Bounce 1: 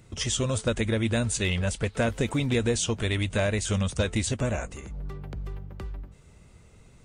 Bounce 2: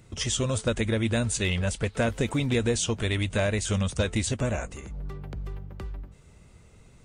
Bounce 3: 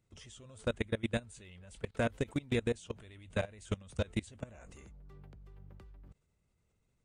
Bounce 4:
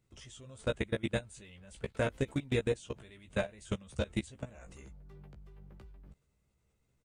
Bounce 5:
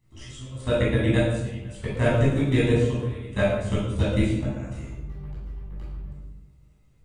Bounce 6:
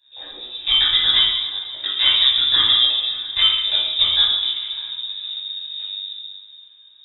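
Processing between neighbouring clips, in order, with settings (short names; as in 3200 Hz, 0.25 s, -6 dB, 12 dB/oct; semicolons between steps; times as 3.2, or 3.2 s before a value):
nothing audible
dynamic EQ 5600 Hz, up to -5 dB, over -46 dBFS, Q 1.4; level quantiser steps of 24 dB; gain -5 dB
doubler 15 ms -5 dB
reverb RT60 0.95 s, pre-delay 16 ms, DRR -7.5 dB
inverted band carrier 3700 Hz; two-slope reverb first 0.54 s, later 4.8 s, from -18 dB, DRR 6.5 dB; gain +3.5 dB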